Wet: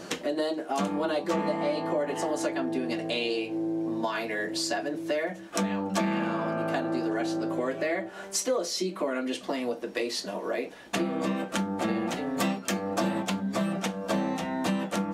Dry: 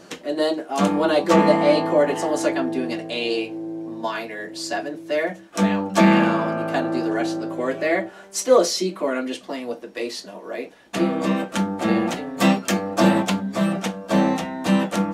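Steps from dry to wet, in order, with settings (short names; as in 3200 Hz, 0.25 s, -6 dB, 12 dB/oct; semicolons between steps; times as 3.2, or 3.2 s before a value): compressor 5:1, threshold -31 dBFS, peak gain reduction 18.5 dB; gain +4 dB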